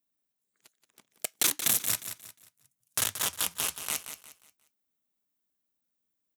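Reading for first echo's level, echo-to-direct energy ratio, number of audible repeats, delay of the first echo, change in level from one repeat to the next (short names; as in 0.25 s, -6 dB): -10.0 dB, -9.5 dB, 3, 0.178 s, -9.5 dB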